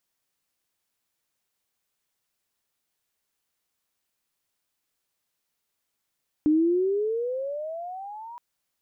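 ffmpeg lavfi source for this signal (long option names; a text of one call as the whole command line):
ffmpeg -f lavfi -i "aevalsrc='pow(10,(-16.5-21.5*t/1.92)/20)*sin(2*PI*298*1.92/(20.5*log(2)/12)*(exp(20.5*log(2)/12*t/1.92)-1))':duration=1.92:sample_rate=44100" out.wav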